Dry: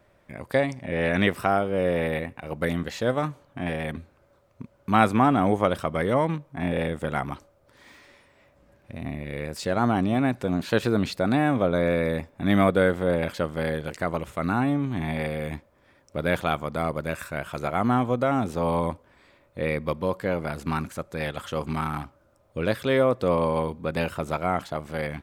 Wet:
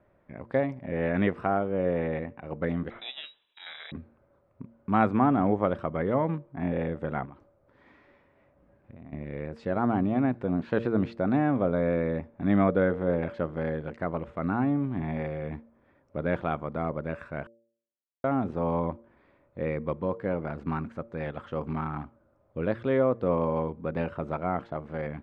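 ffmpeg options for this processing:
-filter_complex "[0:a]asettb=1/sr,asplit=3[s0][s1][s2];[s0]atrim=end=2.904[s3];[s1]atrim=start=2.9:end=3.92,asetpts=PTS-STARTPTS,afade=t=in:d=0.004:c=qsin,afade=t=out:st=1.016:d=0.004:c=qsin,lowpass=f=3400:t=q:w=0.5098,lowpass=f=3400:t=q:w=0.6013,lowpass=f=3400:t=q:w=0.9,lowpass=f=3400:t=q:w=2.563,afreqshift=-4000[s4];[s2]atrim=start=3.916[s5];[s3][s4]acrossfade=d=0.004:c1=hsin:c2=qsin[s6];[s6][s5]acrossfade=d=0.004:c1=qsin:c2=hsin,asettb=1/sr,asplit=3[s7][s8][s9];[s7]atrim=end=7.254[s10];[s8]atrim=start=7.25:end=9.13,asetpts=PTS-STARTPTS,afade=t=in:d=0.004:c=qsin,afade=t=out:st=1.876:d=0.004:c=qsin,acompressor=threshold=0.0112:ratio=6:attack=3.2:release=140:knee=1:detection=peak[s11];[s9]atrim=start=9.126[s12];[s10][s11]acrossfade=d=0.004:c1=hsin:c2=qsin[s13];[s13][s12]acrossfade=d=0.004:c1=qsin:c2=hsin,asplit=3[s14][s15][s16];[s14]atrim=end=17.47,asetpts=PTS-STARTPTS,afade=t=out:st=17.466:d=0.004:c=hsin[s17];[s15]atrim=start=17.47:end=18.24,asetpts=PTS-STARTPTS,volume=0[s18];[s16]atrim=start=18.24,asetpts=PTS-STARTPTS,afade=t=in:d=0.004:c=hsin[s19];[s17][s18][s19]concat=n=3:v=0:a=1,lowpass=1800,equalizer=f=260:t=o:w=2.2:g=3.5,bandreject=f=115.3:t=h:w=4,bandreject=f=230.6:t=h:w=4,bandreject=f=345.9:t=h:w=4,bandreject=f=461.2:t=h:w=4,bandreject=f=576.5:t=h:w=4,volume=0.562"

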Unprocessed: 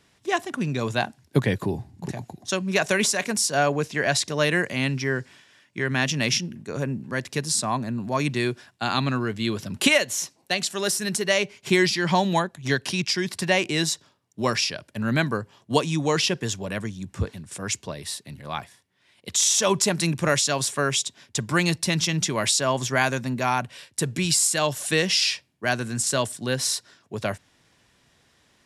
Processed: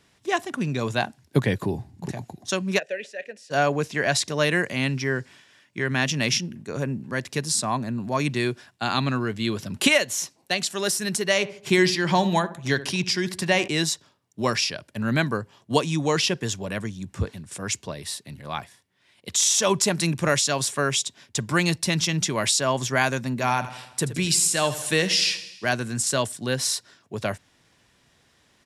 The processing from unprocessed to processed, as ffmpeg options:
-filter_complex "[0:a]asplit=3[s0][s1][s2];[s0]afade=t=out:st=2.78:d=0.02[s3];[s1]asplit=3[s4][s5][s6];[s4]bandpass=f=530:t=q:w=8,volume=1[s7];[s5]bandpass=f=1840:t=q:w=8,volume=0.501[s8];[s6]bandpass=f=2480:t=q:w=8,volume=0.355[s9];[s7][s8][s9]amix=inputs=3:normalize=0,afade=t=in:st=2.78:d=0.02,afade=t=out:st=3.5:d=0.02[s10];[s2]afade=t=in:st=3.5:d=0.02[s11];[s3][s10][s11]amix=inputs=3:normalize=0,asettb=1/sr,asplit=3[s12][s13][s14];[s12]atrim=end=11.284[s15];[s13]atrim=start=11.28:end=13.68,asetpts=PTS-STARTPTS,afade=t=in:d=0.004:c=qsin,afade=t=out:st=2.396:d=0.004:c=qsin,asplit=2[s16][s17];[s17]adelay=71,lowpass=f=1200:p=1,volume=0.224,asplit=2[s18][s19];[s19]adelay=71,lowpass=f=1200:p=1,volume=0.46,asplit=2[s20][s21];[s21]adelay=71,lowpass=f=1200:p=1,volume=0.46,asplit=2[s22][s23];[s23]adelay=71,lowpass=f=1200:p=1,volume=0.46,asplit=2[s24][s25];[s25]adelay=71,lowpass=f=1200:p=1,volume=0.46[s26];[s16][s18][s20][s22][s24][s26]amix=inputs=6:normalize=0,atrim=end_sample=105840[s27];[s14]atrim=start=13.676[s28];[s15][s27]acrossfade=d=0.004:c1=hsin:c2=qsin[s29];[s29][s28]acrossfade=d=0.004:c1=qsin:c2=hsin,asplit=3[s30][s31][s32];[s30]afade=t=out:st=23.4:d=0.02[s33];[s31]aecho=1:1:81|162|243|324|405|486:0.2|0.114|0.0648|0.037|0.0211|0.012,afade=t=in:st=23.4:d=0.02,afade=t=out:st=25.74:d=0.02[s34];[s32]afade=t=in:st=25.74:d=0.02[s35];[s33][s34][s35]amix=inputs=3:normalize=0"

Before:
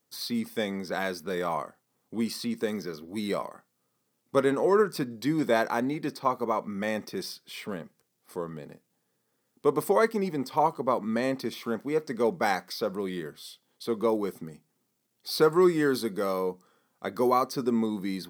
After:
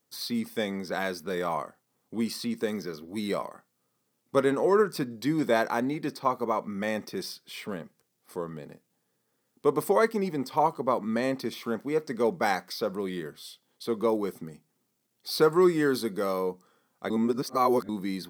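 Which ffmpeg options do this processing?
-filter_complex "[0:a]asplit=3[s0][s1][s2];[s0]atrim=end=17.102[s3];[s1]atrim=start=17.098:end=17.892,asetpts=PTS-STARTPTS,areverse[s4];[s2]atrim=start=17.888[s5];[s3][s4]acrossfade=d=0.004:c1=hsin:c2=hsin[s6];[s6][s5]acrossfade=d=0.004:c1=hsin:c2=hsin"

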